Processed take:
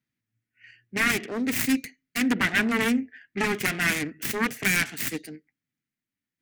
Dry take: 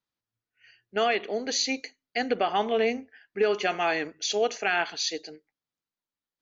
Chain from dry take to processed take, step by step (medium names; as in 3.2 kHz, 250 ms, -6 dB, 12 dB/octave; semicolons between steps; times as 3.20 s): self-modulated delay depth 0.79 ms; graphic EQ 125/250/500/1000/2000/4000 Hz +11/+11/-5/-9/+11/-5 dB